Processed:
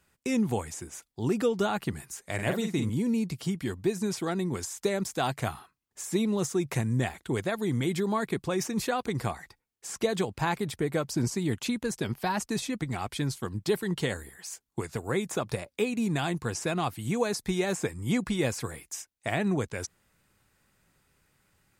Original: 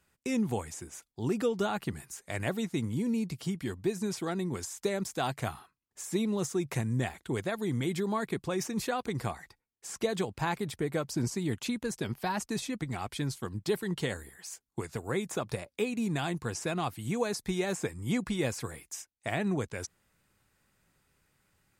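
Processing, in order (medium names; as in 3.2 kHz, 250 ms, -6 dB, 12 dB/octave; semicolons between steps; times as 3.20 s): 2.34–2.90 s: doubling 46 ms -6 dB; trim +3 dB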